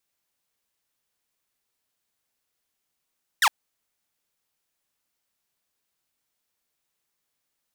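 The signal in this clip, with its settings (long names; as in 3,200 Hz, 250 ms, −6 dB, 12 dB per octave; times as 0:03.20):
single falling chirp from 2,000 Hz, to 770 Hz, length 0.06 s saw, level −13 dB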